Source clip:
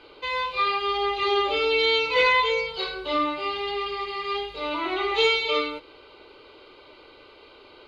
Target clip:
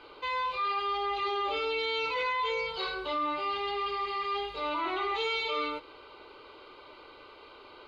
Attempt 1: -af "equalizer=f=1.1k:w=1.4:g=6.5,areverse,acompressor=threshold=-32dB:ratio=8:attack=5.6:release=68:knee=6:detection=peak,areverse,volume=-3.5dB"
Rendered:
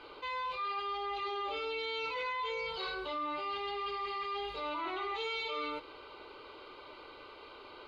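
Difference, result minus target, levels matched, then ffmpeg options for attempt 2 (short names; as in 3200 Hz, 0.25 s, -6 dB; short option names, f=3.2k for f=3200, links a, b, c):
compressor: peak gain reduction +6 dB
-af "equalizer=f=1.1k:w=1.4:g=6.5,areverse,acompressor=threshold=-25dB:ratio=8:attack=5.6:release=68:knee=6:detection=peak,areverse,volume=-3.5dB"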